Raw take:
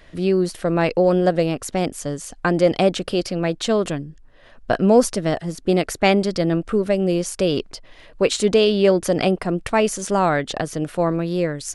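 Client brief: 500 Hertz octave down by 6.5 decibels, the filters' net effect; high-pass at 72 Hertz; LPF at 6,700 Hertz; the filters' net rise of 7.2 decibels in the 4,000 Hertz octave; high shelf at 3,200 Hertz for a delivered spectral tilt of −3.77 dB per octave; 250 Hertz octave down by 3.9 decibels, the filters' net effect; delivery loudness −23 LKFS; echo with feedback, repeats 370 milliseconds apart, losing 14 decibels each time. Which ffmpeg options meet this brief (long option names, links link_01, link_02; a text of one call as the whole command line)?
ffmpeg -i in.wav -af "highpass=72,lowpass=6700,equalizer=frequency=250:width_type=o:gain=-3.5,equalizer=frequency=500:width_type=o:gain=-7.5,highshelf=frequency=3200:gain=4,equalizer=frequency=4000:width_type=o:gain=7,aecho=1:1:370|740:0.2|0.0399,volume=-0.5dB" out.wav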